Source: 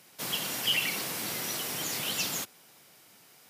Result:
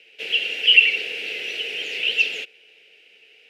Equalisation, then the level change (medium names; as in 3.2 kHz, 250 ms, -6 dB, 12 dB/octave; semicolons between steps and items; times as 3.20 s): two resonant band-passes 1.1 kHz, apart 2.6 oct; peaking EQ 1.8 kHz +14.5 dB 2.5 oct; +7.5 dB